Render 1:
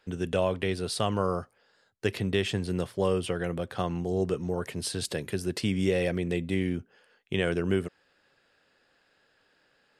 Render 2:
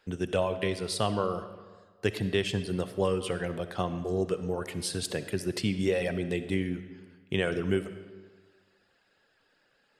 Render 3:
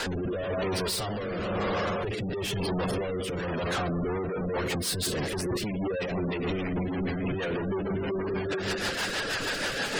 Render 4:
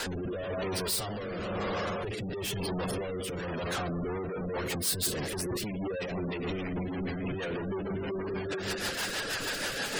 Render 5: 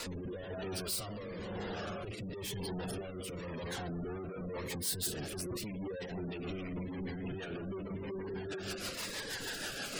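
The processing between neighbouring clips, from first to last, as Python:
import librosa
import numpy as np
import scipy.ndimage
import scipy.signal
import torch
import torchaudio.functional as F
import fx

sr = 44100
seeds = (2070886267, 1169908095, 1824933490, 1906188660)

y1 = fx.dereverb_blind(x, sr, rt60_s=0.8)
y1 = fx.rev_freeverb(y1, sr, rt60_s=1.5, hf_ratio=0.75, predelay_ms=20, drr_db=10.5)
y2 = np.sign(y1) * np.sqrt(np.mean(np.square(y1)))
y2 = fx.spec_gate(y2, sr, threshold_db=-20, keep='strong')
y2 = fx.rotary_switch(y2, sr, hz=1.0, then_hz=6.3, switch_at_s=3.67)
y2 = y2 * librosa.db_to_amplitude(4.5)
y3 = fx.high_shelf(y2, sr, hz=9100.0, db=12.0)
y3 = y3 * librosa.db_to_amplitude(-4.0)
y4 = fx.notch_cascade(y3, sr, direction='falling', hz=0.89)
y4 = y4 * librosa.db_to_amplitude(-5.5)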